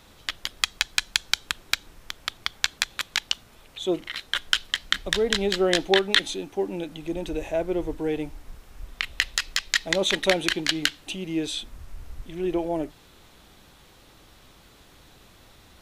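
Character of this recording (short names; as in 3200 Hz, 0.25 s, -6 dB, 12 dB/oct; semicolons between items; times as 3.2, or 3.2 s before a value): noise floor -54 dBFS; spectral tilt -2.5 dB/oct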